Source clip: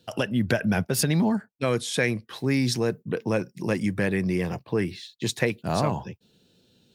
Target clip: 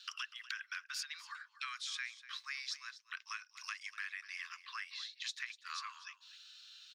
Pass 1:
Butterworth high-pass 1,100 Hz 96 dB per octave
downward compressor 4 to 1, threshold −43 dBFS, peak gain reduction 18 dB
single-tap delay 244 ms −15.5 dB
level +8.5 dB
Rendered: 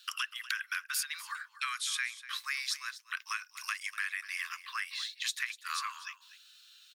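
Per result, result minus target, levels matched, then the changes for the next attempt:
downward compressor: peak gain reduction −8.5 dB; 8,000 Hz band +3.0 dB
change: downward compressor 4 to 1, threshold −53.5 dBFS, peak gain reduction 25.5 dB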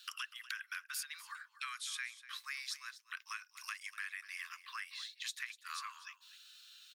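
8,000 Hz band +3.0 dB
add after Butterworth high-pass: high shelf with overshoot 7,900 Hz −13.5 dB, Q 1.5

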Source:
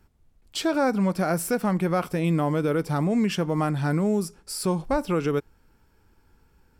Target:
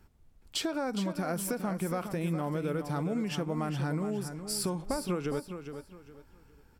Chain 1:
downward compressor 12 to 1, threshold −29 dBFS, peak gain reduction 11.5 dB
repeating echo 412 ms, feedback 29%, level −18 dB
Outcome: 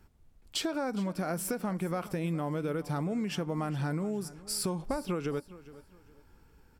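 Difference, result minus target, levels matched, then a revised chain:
echo-to-direct −9 dB
downward compressor 12 to 1, threshold −29 dBFS, peak gain reduction 11.5 dB
repeating echo 412 ms, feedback 29%, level −9 dB

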